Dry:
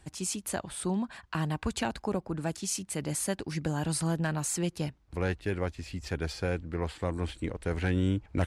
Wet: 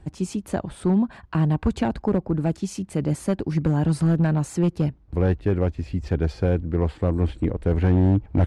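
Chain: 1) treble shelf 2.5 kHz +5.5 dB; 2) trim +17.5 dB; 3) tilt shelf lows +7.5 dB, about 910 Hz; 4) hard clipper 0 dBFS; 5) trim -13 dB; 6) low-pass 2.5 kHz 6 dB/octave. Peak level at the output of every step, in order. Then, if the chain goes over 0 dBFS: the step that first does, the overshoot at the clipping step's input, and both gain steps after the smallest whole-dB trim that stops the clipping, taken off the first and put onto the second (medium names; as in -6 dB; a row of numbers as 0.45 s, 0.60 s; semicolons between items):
-14.0 dBFS, +3.5 dBFS, +6.0 dBFS, 0.0 dBFS, -13.0 dBFS, -13.0 dBFS; step 2, 6.0 dB; step 2 +11.5 dB, step 5 -7 dB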